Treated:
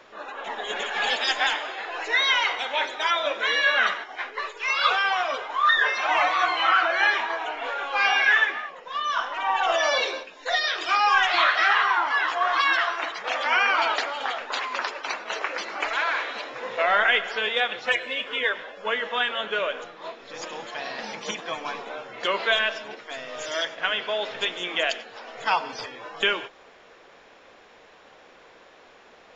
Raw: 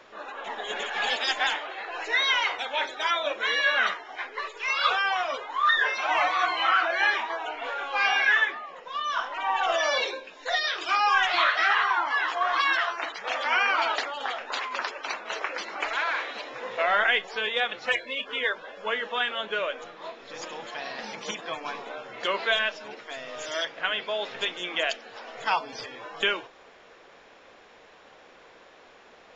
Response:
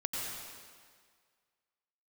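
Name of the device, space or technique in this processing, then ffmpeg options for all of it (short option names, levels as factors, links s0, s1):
keyed gated reverb: -filter_complex "[0:a]asplit=3[s0][s1][s2];[1:a]atrim=start_sample=2205[s3];[s1][s3]afir=irnorm=-1:irlink=0[s4];[s2]apad=whole_len=1294400[s5];[s4][s5]sidechaingate=range=0.0224:threshold=0.0126:ratio=16:detection=peak,volume=0.188[s6];[s0][s6]amix=inputs=2:normalize=0,volume=1.12"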